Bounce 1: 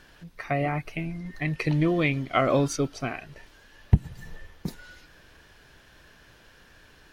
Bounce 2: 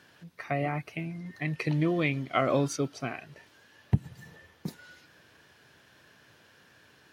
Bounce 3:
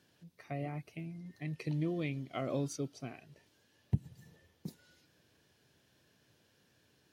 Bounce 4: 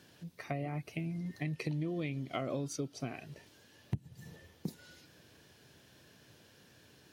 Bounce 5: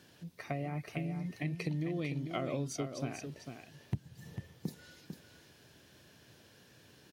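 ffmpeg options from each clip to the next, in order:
-af "highpass=f=95:w=0.5412,highpass=f=95:w=1.3066,volume=-3.5dB"
-af "equalizer=f=1.4k:t=o:w=2.1:g=-10.5,volume=-6.5dB"
-af "acompressor=threshold=-43dB:ratio=5,volume=9dB"
-af "aecho=1:1:448:0.422"

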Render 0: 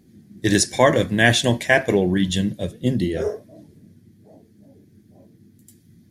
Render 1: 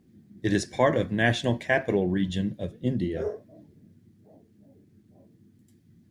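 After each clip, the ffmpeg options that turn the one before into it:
-af "aemphasis=mode=reproduction:type=75kf,acrusher=bits=11:mix=0:aa=0.000001,volume=-6dB"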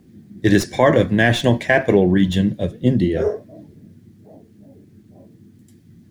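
-filter_complex "[0:a]acrossover=split=570|3100[a][b][c];[c]aeval=exprs='clip(val(0),-1,0.00596)':c=same[d];[a][b][d]amix=inputs=3:normalize=0,alimiter=level_in=12dB:limit=-1dB:release=50:level=0:latency=1,volume=-1.5dB"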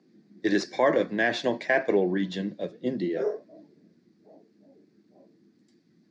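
-af "highpass=f=210:w=0.5412,highpass=f=210:w=1.3066,equalizer=f=230:t=q:w=4:g=-6,equalizer=f=3.1k:t=q:w=4:g=-7,equalizer=f=4.6k:t=q:w=4:g=6,lowpass=f=5.9k:w=0.5412,lowpass=f=5.9k:w=1.3066,volume=-7.5dB"

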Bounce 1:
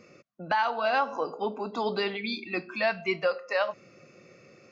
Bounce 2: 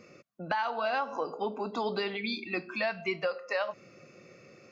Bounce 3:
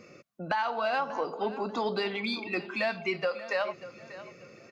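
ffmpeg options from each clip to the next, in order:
-af "acompressor=threshold=-29dB:ratio=2.5"
-filter_complex "[0:a]asplit=2[a][b];[b]asoftclip=type=tanh:threshold=-30dB,volume=-11dB[c];[a][c]amix=inputs=2:normalize=0,aecho=1:1:589|1178|1767:0.168|0.0571|0.0194"

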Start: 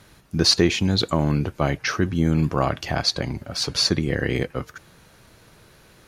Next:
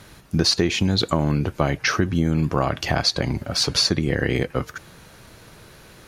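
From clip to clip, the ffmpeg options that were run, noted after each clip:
-af "acompressor=threshold=-22dB:ratio=4,volume=5.5dB"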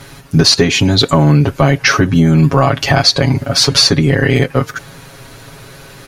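-af "aecho=1:1:7.3:0.93,apsyclip=9.5dB,volume=-1.5dB"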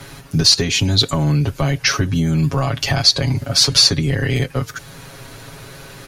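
-filter_complex "[0:a]acrossover=split=120|3000[a][b][c];[b]acompressor=threshold=-35dB:ratio=1.5[d];[a][d][c]amix=inputs=3:normalize=0,volume=-1dB"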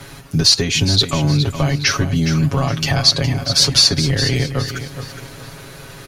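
-af "aecho=1:1:415|830|1245|1660:0.316|0.114|0.041|0.0148"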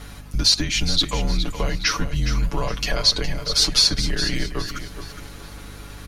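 -af "afreqshift=-110,aeval=exprs='val(0)+0.0178*(sin(2*PI*50*n/s)+sin(2*PI*2*50*n/s)/2+sin(2*PI*3*50*n/s)/3+sin(2*PI*4*50*n/s)/4+sin(2*PI*5*50*n/s)/5)':c=same,volume=-4.5dB"

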